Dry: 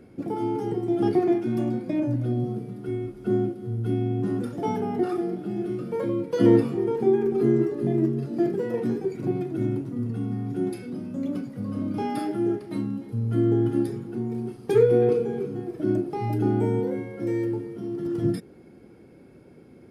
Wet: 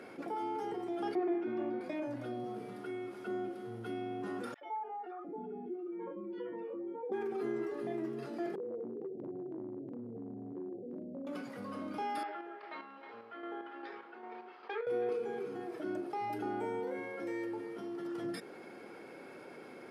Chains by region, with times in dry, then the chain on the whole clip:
0:01.15–0:01.81: low-pass filter 2,700 Hz + parametric band 340 Hz +8 dB
0:04.54–0:07.12: expanding power law on the bin magnitudes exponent 1.6 + loudspeaker in its box 220–3,300 Hz, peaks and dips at 270 Hz −4 dB, 430 Hz −5 dB, 680 Hz −9 dB, 1,300 Hz −4 dB + three-band delay without the direct sound highs, mids, lows 70/700 ms, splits 530/1,600 Hz
0:08.55–0:11.27: Butterworth low-pass 610 Hz 48 dB per octave + downward compressor, threshold −28 dBFS
0:12.23–0:14.87: band-pass filter 740–4,000 Hz + square-wave tremolo 2.5 Hz, depth 60%, duty 45% + high-frequency loss of the air 210 metres
whole clip: high-pass filter 1,000 Hz 12 dB per octave; spectral tilt −3 dB per octave; envelope flattener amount 50%; level −7 dB

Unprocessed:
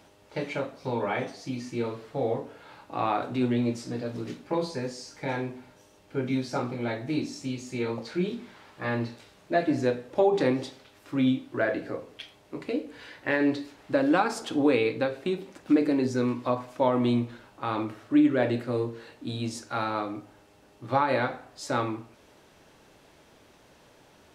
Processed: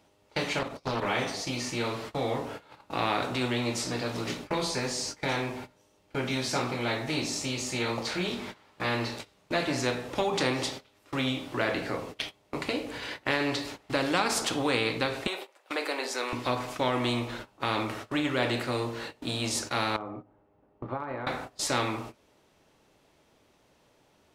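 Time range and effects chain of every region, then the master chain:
0:00.59–0:01.06: low-shelf EQ 92 Hz +5 dB + output level in coarse steps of 10 dB + highs frequency-modulated by the lows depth 0.47 ms
0:15.27–0:16.33: high-pass filter 520 Hz 24 dB per octave + parametric band 6,000 Hz −5.5 dB 0.87 octaves
0:19.96–0:21.27: low-pass filter 1,200 Hz + downward compressor 2 to 1, threshold −51 dBFS + transient designer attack +9 dB, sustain +2 dB
whole clip: parametric band 1,600 Hz −4.5 dB 0.21 octaves; noise gate −46 dBFS, range −20 dB; every bin compressed towards the loudest bin 2 to 1

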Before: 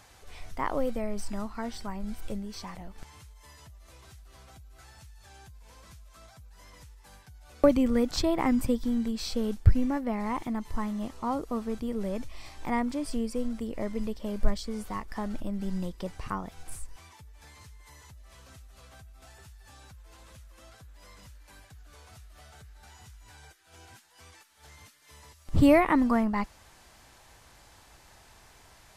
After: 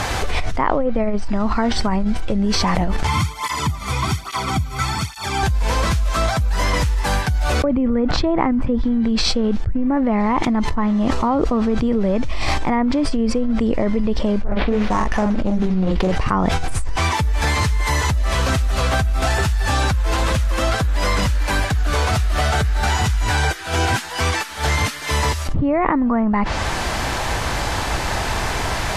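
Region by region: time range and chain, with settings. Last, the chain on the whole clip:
0:03.07–0:05.43: high-pass filter 72 Hz 24 dB per octave + comb filter 0.9 ms, depth 68% + through-zero flanger with one copy inverted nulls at 1.2 Hz, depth 3.4 ms
0:14.41–0:16.16: double-tracking delay 43 ms −6 dB + sample-rate reduction 7,800 Hz + highs frequency-modulated by the lows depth 0.66 ms
whole clip: low-pass filter 3,300 Hz 6 dB per octave; treble cut that deepens with the level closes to 1,800 Hz, closed at −21.5 dBFS; envelope flattener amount 100%; level −5 dB

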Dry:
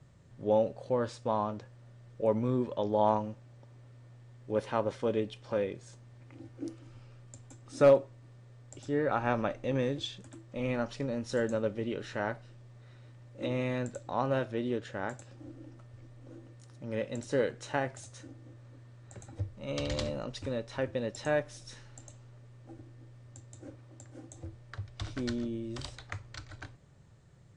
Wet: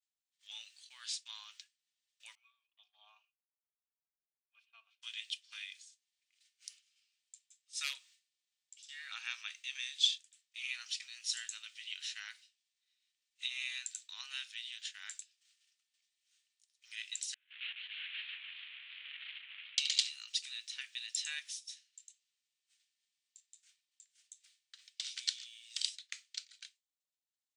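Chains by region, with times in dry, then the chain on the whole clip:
0:02.35–0:05.02: formant filter a + high-shelf EQ 2,800 Hz −9.5 dB + comb filter 4.4 ms
0:17.34–0:19.78: linear delta modulator 16 kbit/s, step −39 dBFS + compressor whose output falls as the input rises −45 dBFS + feedback echo with a swinging delay time 148 ms, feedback 62%, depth 139 cents, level −3.5 dB
whole clip: downward expander −40 dBFS; inverse Chebyshev high-pass filter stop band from 480 Hz, stop band 80 dB; level +10.5 dB

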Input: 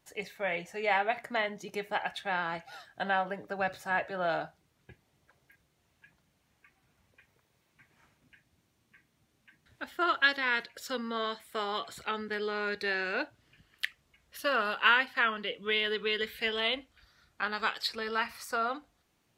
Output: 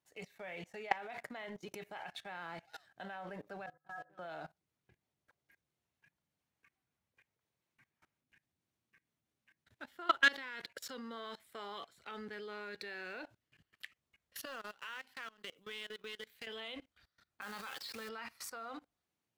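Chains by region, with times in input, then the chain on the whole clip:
0:03.66–0:04.19: Butterworth low-pass 1,700 Hz 72 dB per octave + stiff-string resonator 150 Hz, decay 0.24 s, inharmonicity 0.03
0:14.45–0:16.47: mu-law and A-law mismatch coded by A + high-shelf EQ 5,400 Hz +8 dB + downward compressor 3 to 1, threshold −46 dBFS
0:17.41–0:18.09: comb filter 3.8 ms, depth 34% + log-companded quantiser 4 bits
whole clip: high-pass filter 70 Hz; leveller curve on the samples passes 1; output level in coarse steps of 22 dB; level −1.5 dB

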